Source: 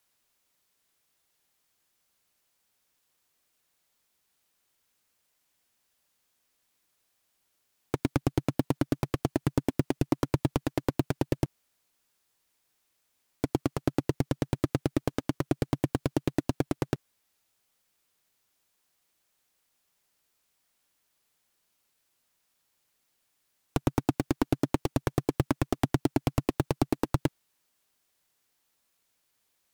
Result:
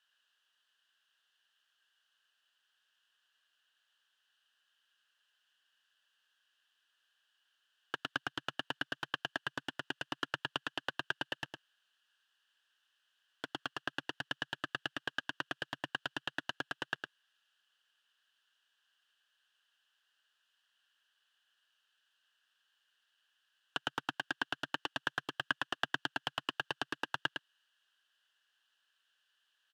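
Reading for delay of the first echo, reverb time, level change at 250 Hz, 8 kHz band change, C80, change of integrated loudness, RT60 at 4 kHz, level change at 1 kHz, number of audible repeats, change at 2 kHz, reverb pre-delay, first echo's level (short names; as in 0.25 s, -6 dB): 0.108 s, none, -20.0 dB, -11.5 dB, none, -8.5 dB, none, -5.0 dB, 1, +6.0 dB, none, -6.0 dB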